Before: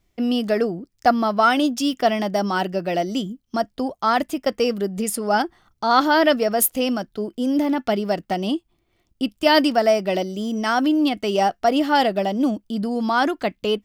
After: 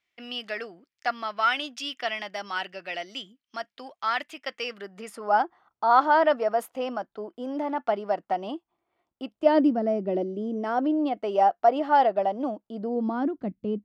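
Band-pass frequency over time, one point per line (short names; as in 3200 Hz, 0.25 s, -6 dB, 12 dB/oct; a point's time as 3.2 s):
band-pass, Q 1.4
4.61 s 2300 Hz
5.37 s 900 Hz
9.24 s 900 Hz
9.78 s 240 Hz
11.41 s 780 Hz
12.67 s 780 Hz
13.34 s 180 Hz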